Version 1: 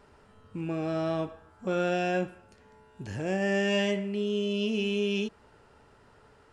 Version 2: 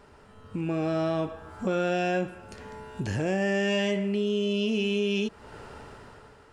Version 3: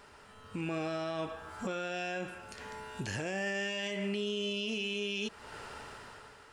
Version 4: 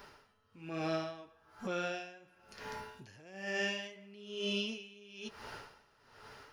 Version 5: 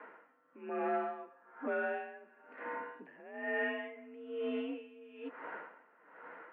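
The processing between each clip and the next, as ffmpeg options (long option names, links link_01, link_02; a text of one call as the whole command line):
ffmpeg -i in.wav -filter_complex "[0:a]dynaudnorm=framelen=120:gausssize=11:maxgain=10.5dB,asplit=2[link_01][link_02];[link_02]alimiter=limit=-15.5dB:level=0:latency=1:release=27,volume=-2.5dB[link_03];[link_01][link_03]amix=inputs=2:normalize=0,acompressor=threshold=-32dB:ratio=2,volume=-1dB" out.wav
ffmpeg -i in.wav -af "tiltshelf=frequency=790:gain=-6,alimiter=level_in=0.5dB:limit=-24dB:level=0:latency=1:release=99,volume=-0.5dB,volume=-1.5dB" out.wav
ffmpeg -i in.wav -filter_complex "[0:a]acrossover=split=700[link_01][link_02];[link_02]aexciter=amount=1.1:drive=2.9:freq=4500[link_03];[link_01][link_03]amix=inputs=2:normalize=0,flanger=delay=5:depth=4.4:regen=-46:speed=1.2:shape=triangular,aeval=exprs='val(0)*pow(10,-23*(0.5-0.5*cos(2*PI*1.1*n/s))/20)':channel_layout=same,volume=5.5dB" out.wav
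ffmpeg -i in.wav -af "asoftclip=type=tanh:threshold=-30dB,highpass=frequency=190:width_type=q:width=0.5412,highpass=frequency=190:width_type=q:width=1.307,lowpass=frequency=2100:width_type=q:width=0.5176,lowpass=frequency=2100:width_type=q:width=0.7071,lowpass=frequency=2100:width_type=q:width=1.932,afreqshift=51,volume=4dB" out.wav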